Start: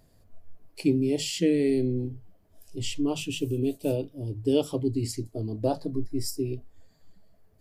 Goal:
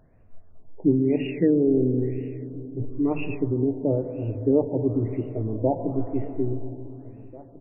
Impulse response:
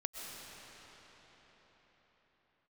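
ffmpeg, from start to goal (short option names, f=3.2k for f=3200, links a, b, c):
-filter_complex "[0:a]asplit=2[a][b];[b]adelay=1691,volume=-20dB,highshelf=f=4k:g=-38[c];[a][c]amix=inputs=2:normalize=0,asplit=2[d][e];[1:a]atrim=start_sample=2205,asetrate=70560,aresample=44100[f];[e][f]afir=irnorm=-1:irlink=0,volume=0.5dB[g];[d][g]amix=inputs=2:normalize=0,afftfilt=real='re*lt(b*sr/1024,960*pow(2900/960,0.5+0.5*sin(2*PI*1*pts/sr)))':imag='im*lt(b*sr/1024,960*pow(2900/960,0.5+0.5*sin(2*PI*1*pts/sr)))':win_size=1024:overlap=0.75"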